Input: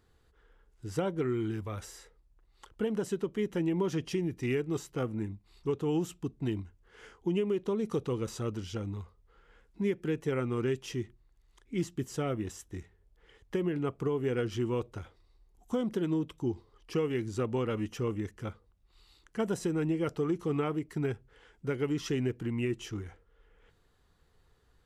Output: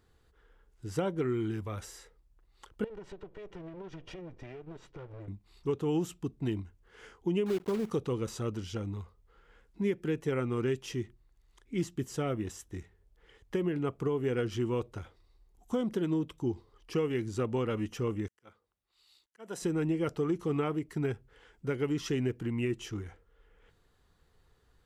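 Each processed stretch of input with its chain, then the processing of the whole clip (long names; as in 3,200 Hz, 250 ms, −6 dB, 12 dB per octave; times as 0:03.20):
0:02.84–0:05.28: lower of the sound and its delayed copy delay 2.1 ms + low-pass filter 3,400 Hz + downward compressor, threshold −42 dBFS
0:07.46–0:07.91: one scale factor per block 3 bits + high-shelf EQ 2,400 Hz −10.5 dB
0:18.28–0:19.62: high-pass filter 570 Hz 6 dB per octave + volume swells 317 ms + multiband upward and downward expander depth 40%
whole clip: no processing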